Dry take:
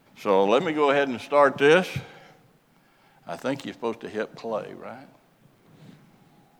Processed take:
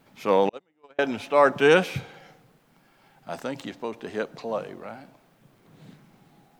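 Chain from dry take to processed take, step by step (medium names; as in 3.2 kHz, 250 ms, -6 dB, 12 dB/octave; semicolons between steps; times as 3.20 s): 0.49–0.99 s: gate -14 dBFS, range -43 dB; 3.35–3.98 s: compression 2.5:1, threshold -29 dBFS, peak gain reduction 5.5 dB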